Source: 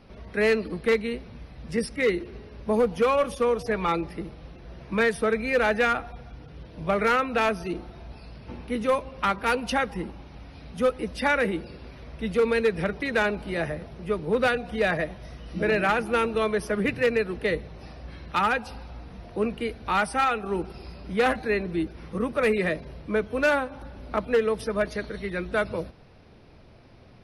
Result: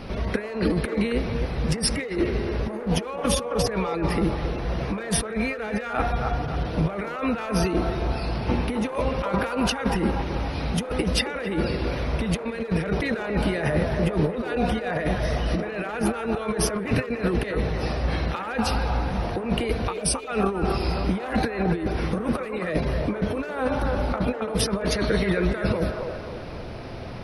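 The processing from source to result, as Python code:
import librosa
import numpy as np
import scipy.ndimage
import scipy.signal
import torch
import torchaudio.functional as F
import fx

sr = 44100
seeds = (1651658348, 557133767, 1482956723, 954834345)

y = fx.over_compress(x, sr, threshold_db=-35.0, ratio=-1.0)
y = fx.spec_box(y, sr, start_s=19.93, length_s=0.35, low_hz=630.0, high_hz=2200.0, gain_db=-29)
y = fx.echo_wet_bandpass(y, sr, ms=269, feedback_pct=44, hz=830.0, wet_db=-3)
y = y * librosa.db_to_amplitude(8.5)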